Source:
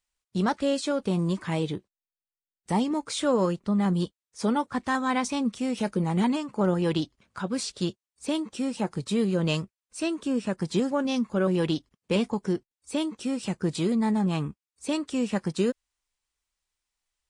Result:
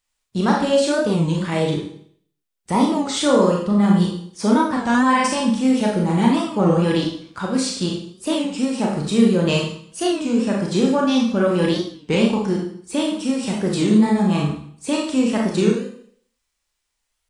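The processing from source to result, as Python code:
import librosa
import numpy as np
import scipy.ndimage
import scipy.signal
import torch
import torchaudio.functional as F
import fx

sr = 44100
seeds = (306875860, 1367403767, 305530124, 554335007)

y = fx.ripple_eq(x, sr, per_octave=1.3, db=9, at=(5.03, 5.5))
y = fx.rev_schroeder(y, sr, rt60_s=0.59, comb_ms=27, drr_db=-1.5)
y = fx.record_warp(y, sr, rpm=33.33, depth_cents=160.0)
y = y * 10.0 ** (4.5 / 20.0)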